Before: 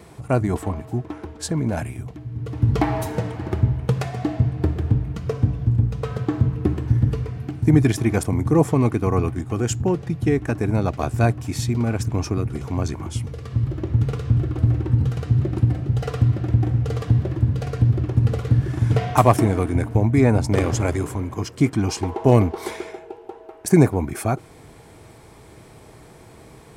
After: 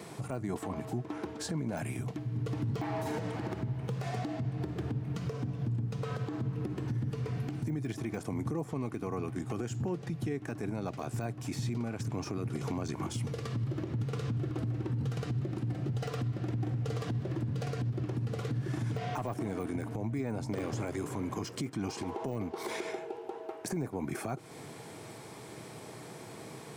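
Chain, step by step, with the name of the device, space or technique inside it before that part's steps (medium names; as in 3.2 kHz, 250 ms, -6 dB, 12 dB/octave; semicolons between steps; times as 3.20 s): broadcast voice chain (high-pass 120 Hz 24 dB/octave; de-esser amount 85%; compression 5:1, threshold -29 dBFS, peak gain reduction 17.5 dB; peaking EQ 5.4 kHz +3 dB 1.6 oct; peak limiter -26 dBFS, peak gain reduction 10.5 dB)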